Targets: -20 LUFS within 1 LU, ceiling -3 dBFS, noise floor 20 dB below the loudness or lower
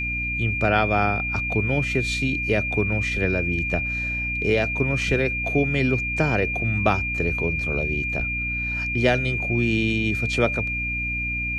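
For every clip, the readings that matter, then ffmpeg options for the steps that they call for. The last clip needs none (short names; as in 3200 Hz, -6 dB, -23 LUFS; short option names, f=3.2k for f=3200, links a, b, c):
hum 60 Hz; harmonics up to 300 Hz; hum level -29 dBFS; steady tone 2400 Hz; tone level -25 dBFS; loudness -22.5 LUFS; peak -6.5 dBFS; loudness target -20.0 LUFS
-> -af "bandreject=f=60:t=h:w=4,bandreject=f=120:t=h:w=4,bandreject=f=180:t=h:w=4,bandreject=f=240:t=h:w=4,bandreject=f=300:t=h:w=4"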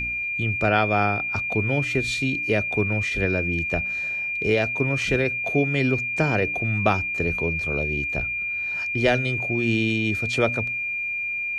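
hum none; steady tone 2400 Hz; tone level -25 dBFS
-> -af "bandreject=f=2.4k:w=30"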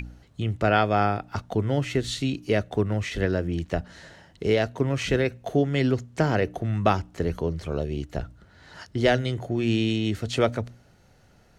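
steady tone none; loudness -26.0 LUFS; peak -7.0 dBFS; loudness target -20.0 LUFS
-> -af "volume=6dB,alimiter=limit=-3dB:level=0:latency=1"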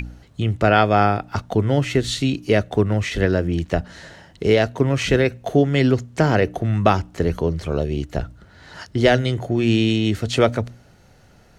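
loudness -20.0 LUFS; peak -3.0 dBFS; noise floor -51 dBFS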